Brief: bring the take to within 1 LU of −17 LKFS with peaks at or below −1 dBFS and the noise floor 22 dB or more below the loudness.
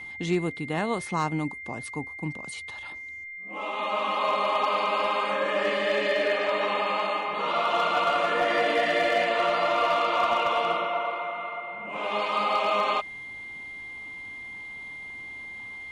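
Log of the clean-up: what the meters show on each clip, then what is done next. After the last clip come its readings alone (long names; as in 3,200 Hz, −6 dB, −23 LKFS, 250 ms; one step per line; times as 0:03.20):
share of clipped samples 0.3%; peaks flattened at −16.5 dBFS; interfering tone 2,100 Hz; level of the tone −37 dBFS; integrated loudness −26.0 LKFS; sample peak −16.5 dBFS; target loudness −17.0 LKFS
→ clipped peaks rebuilt −16.5 dBFS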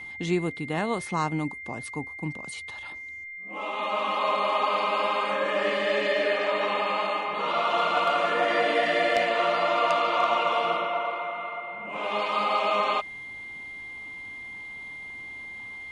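share of clipped samples 0.0%; interfering tone 2,100 Hz; level of the tone −37 dBFS
→ notch filter 2,100 Hz, Q 30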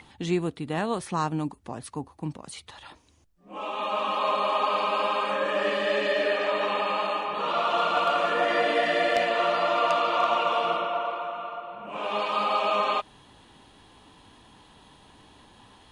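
interfering tone none found; integrated loudness −26.0 LKFS; sample peak −7.5 dBFS; target loudness −17.0 LKFS
→ level +9 dB
brickwall limiter −1 dBFS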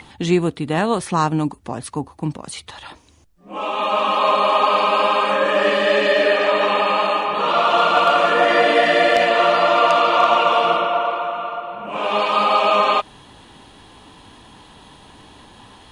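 integrated loudness −17.0 LKFS; sample peak −1.0 dBFS; background noise floor −47 dBFS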